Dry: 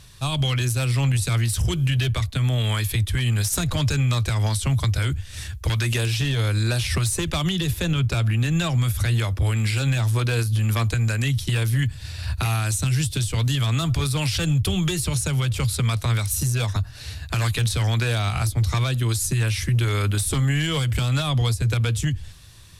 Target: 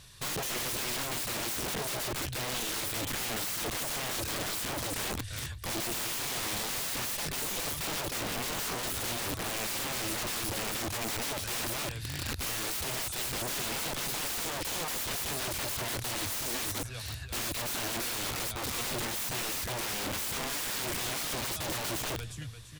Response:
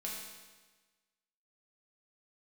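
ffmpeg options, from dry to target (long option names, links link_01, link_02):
-af "lowshelf=frequency=210:gain=-6,aecho=1:1:344|688|1032:0.237|0.0783|0.0258,aeval=exprs='(mod(20*val(0)+1,2)-1)/20':channel_layout=same,volume=-3.5dB"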